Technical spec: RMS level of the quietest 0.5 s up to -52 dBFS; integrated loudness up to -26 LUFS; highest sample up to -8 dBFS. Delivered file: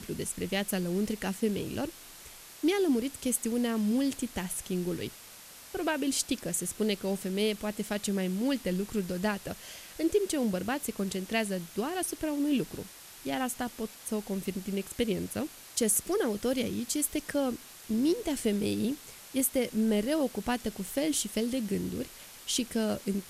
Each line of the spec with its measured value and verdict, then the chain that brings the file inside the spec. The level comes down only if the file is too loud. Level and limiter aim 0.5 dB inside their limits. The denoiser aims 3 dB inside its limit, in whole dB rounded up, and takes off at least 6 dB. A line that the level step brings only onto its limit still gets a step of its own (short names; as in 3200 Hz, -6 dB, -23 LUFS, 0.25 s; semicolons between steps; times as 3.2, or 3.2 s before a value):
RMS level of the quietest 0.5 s -50 dBFS: fail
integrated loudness -31.5 LUFS: OK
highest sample -14.0 dBFS: OK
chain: denoiser 6 dB, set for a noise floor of -50 dBFS